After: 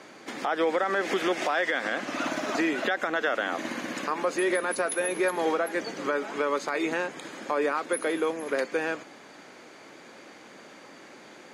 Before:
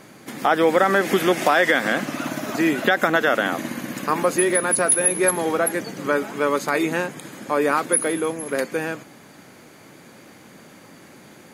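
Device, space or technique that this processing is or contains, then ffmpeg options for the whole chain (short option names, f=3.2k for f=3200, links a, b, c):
DJ mixer with the lows and highs turned down: -filter_complex "[0:a]acrossover=split=270 7500:gain=0.158 1 0.0891[a][b][c];[a][b][c]amix=inputs=3:normalize=0,alimiter=limit=-16.5dB:level=0:latency=1:release=251"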